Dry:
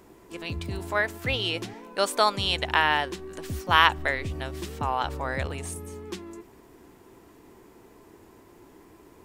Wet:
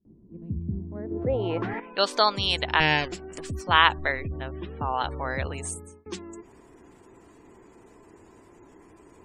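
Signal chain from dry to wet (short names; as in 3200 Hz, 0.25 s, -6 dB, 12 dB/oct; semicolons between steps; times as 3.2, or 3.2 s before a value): 2.8–3.4 minimum comb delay 0.41 ms; 4.12–4.94 air absorption 260 m; 5.47–6.06 fade out equal-power; spectral gate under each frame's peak -30 dB strong; low-pass sweep 200 Hz -> 8300 Hz, 0.9–2.32; gate with hold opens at -47 dBFS; 1.11–1.8 fast leveller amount 50%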